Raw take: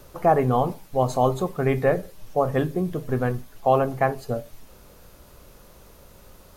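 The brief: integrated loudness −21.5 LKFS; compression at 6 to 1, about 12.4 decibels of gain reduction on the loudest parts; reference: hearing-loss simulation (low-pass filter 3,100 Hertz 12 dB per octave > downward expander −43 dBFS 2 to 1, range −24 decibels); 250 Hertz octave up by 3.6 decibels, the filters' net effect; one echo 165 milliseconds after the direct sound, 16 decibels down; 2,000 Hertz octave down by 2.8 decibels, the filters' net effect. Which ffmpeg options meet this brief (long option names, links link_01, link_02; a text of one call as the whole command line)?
ffmpeg -i in.wav -af "equalizer=frequency=250:width_type=o:gain=4.5,equalizer=frequency=2000:width_type=o:gain=-3,acompressor=threshold=-27dB:ratio=6,lowpass=3100,aecho=1:1:165:0.158,agate=range=-24dB:threshold=-43dB:ratio=2,volume=11dB" out.wav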